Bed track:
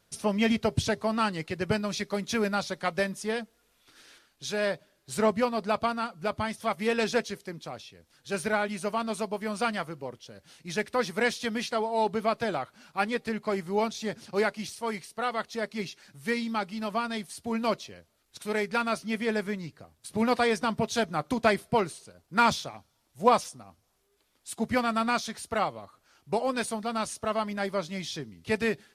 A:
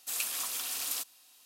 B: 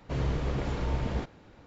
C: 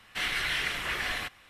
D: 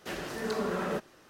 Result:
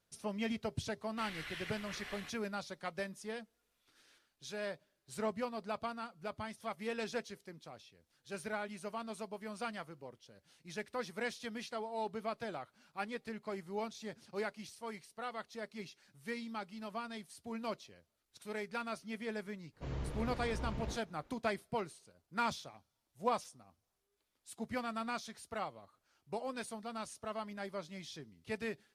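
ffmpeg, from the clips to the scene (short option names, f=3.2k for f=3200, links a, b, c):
-filter_complex "[0:a]volume=-12.5dB[a];[3:a]atrim=end=1.49,asetpts=PTS-STARTPTS,volume=-16dB,afade=t=in:d=0.004:c=hsin,afade=t=out:st=1.486:d=0.004:c=hsin,adelay=1020[b];[2:a]atrim=end=1.66,asetpts=PTS-STARTPTS,volume=-11dB,afade=t=in:d=0.1,afade=t=out:st=1.56:d=0.1,adelay=869652S[c];[a][b][c]amix=inputs=3:normalize=0"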